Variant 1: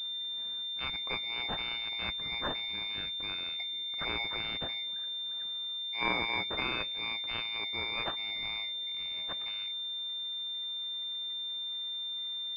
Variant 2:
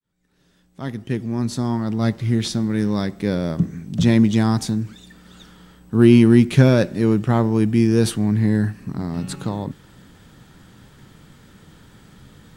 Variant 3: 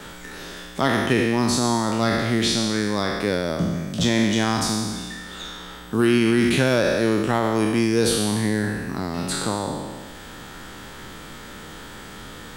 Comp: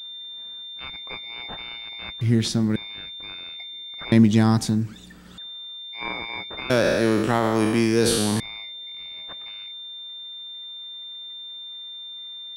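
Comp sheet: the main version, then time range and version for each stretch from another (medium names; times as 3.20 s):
1
2.21–2.76 s: from 2
4.12–5.38 s: from 2
6.70–8.40 s: from 3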